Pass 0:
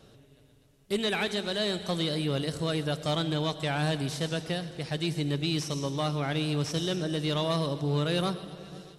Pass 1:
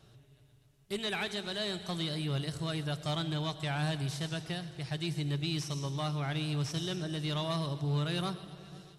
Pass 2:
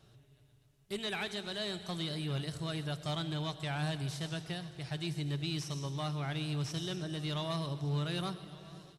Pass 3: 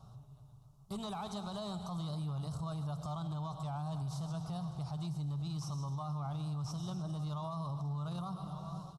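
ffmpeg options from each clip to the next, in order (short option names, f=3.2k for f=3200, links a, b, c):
-af "equalizer=f=125:t=o:w=0.33:g=8,equalizer=f=250:t=o:w=0.33:g=-10,equalizer=f=500:t=o:w=0.33:g=-10,volume=-4.5dB"
-af "aecho=1:1:1170:0.0944,volume=-2.5dB"
-af "firequalizer=gain_entry='entry(180,0);entry(340,-16);entry(770,2);entry(1200,3);entry(1700,-27);entry(3800,-13);entry(5500,-8);entry(9100,-10)':delay=0.05:min_phase=1,acompressor=threshold=-41dB:ratio=2.5,alimiter=level_in=17.5dB:limit=-24dB:level=0:latency=1:release=32,volume=-17.5dB,volume=8.5dB"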